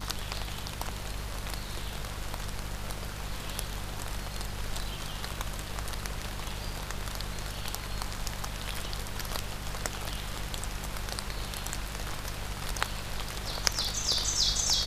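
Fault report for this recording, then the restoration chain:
hum 50 Hz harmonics 4 -40 dBFS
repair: de-hum 50 Hz, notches 4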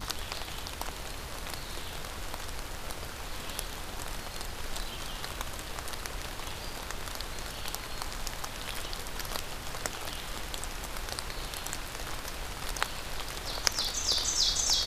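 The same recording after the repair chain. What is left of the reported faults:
none

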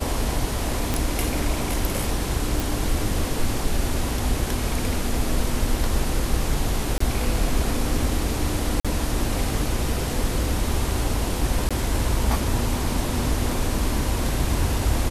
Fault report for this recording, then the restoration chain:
0.94 pop
2.6 pop
6.98–7 gap 24 ms
8.8–8.85 gap 46 ms
11.69–11.71 gap 16 ms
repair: de-click; interpolate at 6.98, 24 ms; interpolate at 8.8, 46 ms; interpolate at 11.69, 16 ms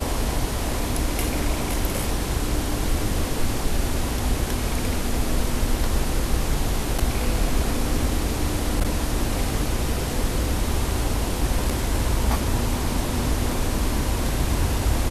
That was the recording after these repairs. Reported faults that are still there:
none

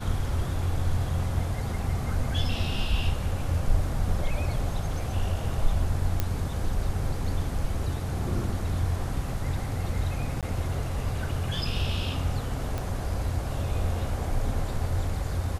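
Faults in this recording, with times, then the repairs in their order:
6.2 pop -11 dBFS
10.41–10.43 gap 17 ms
12.78 pop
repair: de-click; interpolate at 10.41, 17 ms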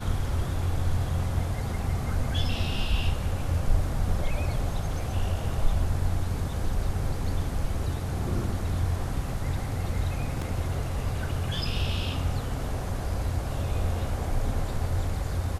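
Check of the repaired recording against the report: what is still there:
6.2 pop

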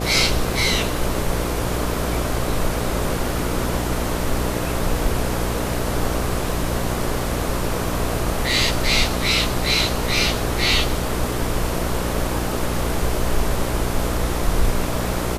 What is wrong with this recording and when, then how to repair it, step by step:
buzz 60 Hz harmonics 11 -26 dBFS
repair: de-hum 60 Hz, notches 11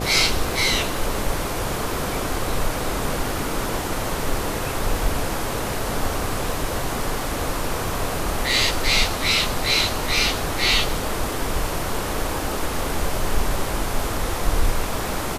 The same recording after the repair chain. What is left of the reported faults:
none

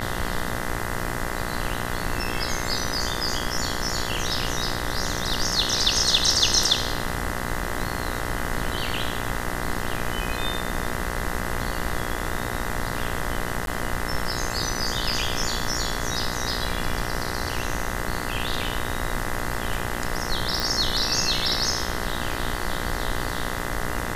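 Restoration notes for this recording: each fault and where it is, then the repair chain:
buzz 60 Hz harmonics 34 -31 dBFS
13.66–13.67 gap 12 ms
20.6 pop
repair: de-click; de-hum 60 Hz, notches 34; interpolate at 13.66, 12 ms

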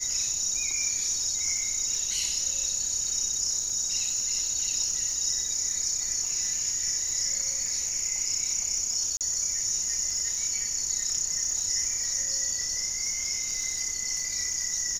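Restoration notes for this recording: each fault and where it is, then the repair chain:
crackle 32/s -33 dBFS
9.17–9.21 gap 38 ms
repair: de-click; interpolate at 9.17, 38 ms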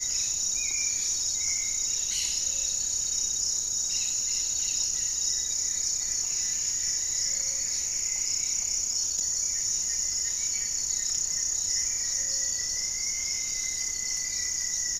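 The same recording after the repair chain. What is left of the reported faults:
none

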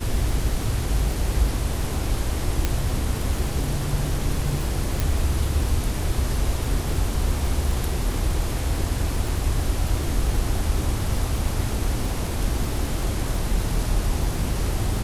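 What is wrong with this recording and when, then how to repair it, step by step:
crackle 56/s -29 dBFS
2.65 pop -7 dBFS
5 pop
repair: de-click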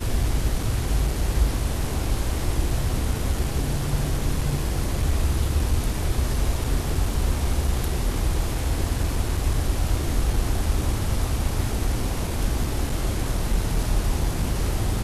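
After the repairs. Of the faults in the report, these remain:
2.65 pop

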